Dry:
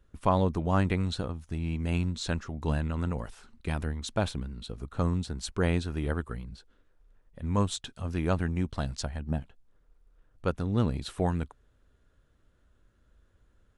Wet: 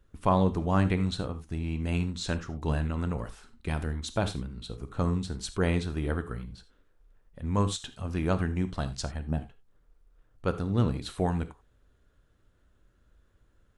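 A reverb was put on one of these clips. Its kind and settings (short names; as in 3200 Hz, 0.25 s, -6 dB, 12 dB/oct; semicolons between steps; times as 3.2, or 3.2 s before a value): non-linear reverb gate 0.11 s flat, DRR 10 dB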